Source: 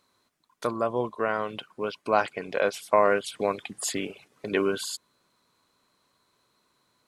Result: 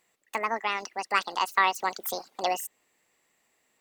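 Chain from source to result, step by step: wide varispeed 1.86×; gain -1.5 dB

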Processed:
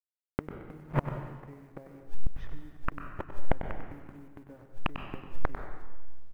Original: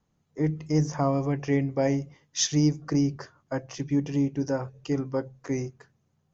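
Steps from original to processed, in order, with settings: level-crossing sampler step -29.5 dBFS; LPF 2100 Hz 24 dB/oct; AGC gain up to 11 dB; in parallel at 0 dB: limiter -12 dBFS, peak gain reduction 9 dB; on the sum: compressor 8:1, threshold -23 dBFS, peak gain reduction 17.5 dB; flipped gate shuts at -23 dBFS, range -33 dB; companded quantiser 8-bit; echo 97 ms -10.5 dB; plate-style reverb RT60 1.2 s, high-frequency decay 0.95×, pre-delay 0.11 s, DRR 7.5 dB; gain +7.5 dB

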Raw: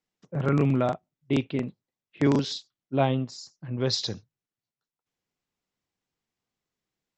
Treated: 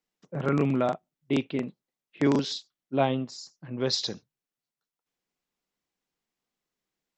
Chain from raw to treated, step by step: bell 98 Hz -13 dB 0.76 oct

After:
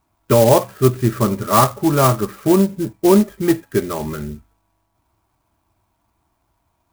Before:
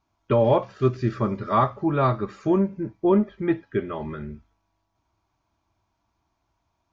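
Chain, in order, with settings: clock jitter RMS 0.059 ms; gain +7 dB

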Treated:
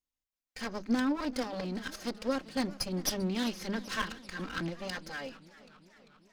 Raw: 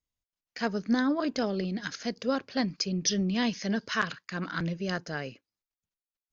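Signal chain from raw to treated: minimum comb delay 3.8 ms; notches 50/100/150/200 Hz; warbling echo 0.394 s, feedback 65%, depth 136 cents, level -19 dB; gain -2.5 dB

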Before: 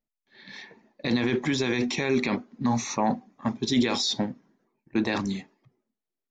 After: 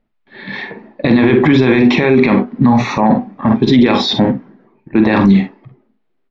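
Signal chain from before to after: air absorption 410 m; early reflections 46 ms -9 dB, 61 ms -14.5 dB; maximiser +23 dB; gain -1 dB

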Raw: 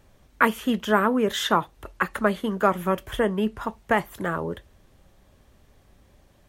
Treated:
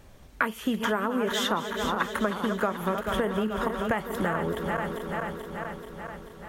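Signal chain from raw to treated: regenerating reverse delay 0.217 s, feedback 80%, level -10 dB; compressor 6:1, threshold -29 dBFS, peak gain reduction 15.5 dB; gain +5 dB

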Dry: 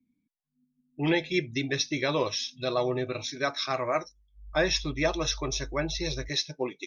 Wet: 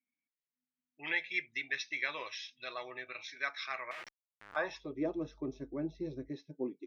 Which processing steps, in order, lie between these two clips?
3.91–4.56 Schmitt trigger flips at -44.5 dBFS; band-pass sweep 2000 Hz -> 270 Hz, 4.38–5.13

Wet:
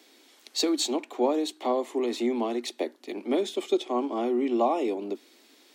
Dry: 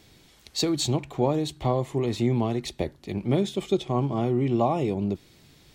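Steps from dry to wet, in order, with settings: steep high-pass 240 Hz 72 dB/oct

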